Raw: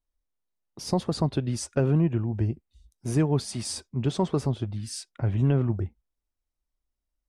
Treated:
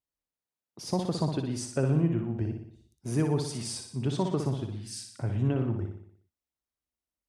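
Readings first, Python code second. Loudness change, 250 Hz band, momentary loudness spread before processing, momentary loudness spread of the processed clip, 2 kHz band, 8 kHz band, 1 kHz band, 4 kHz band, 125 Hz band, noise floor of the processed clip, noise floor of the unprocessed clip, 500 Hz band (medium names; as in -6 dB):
-3.0 dB, -2.5 dB, 11 LU, 12 LU, -2.5 dB, -2.5 dB, -2.5 dB, -3.0 dB, -4.0 dB, under -85 dBFS, -85 dBFS, -3.0 dB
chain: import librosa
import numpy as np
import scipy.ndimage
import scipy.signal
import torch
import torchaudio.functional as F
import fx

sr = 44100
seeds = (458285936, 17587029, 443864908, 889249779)

y = scipy.signal.sosfilt(scipy.signal.butter(2, 91.0, 'highpass', fs=sr, output='sos'), x)
y = fx.echo_feedback(y, sr, ms=60, feedback_pct=53, wet_db=-6.0)
y = y * librosa.db_to_amplitude(-4.0)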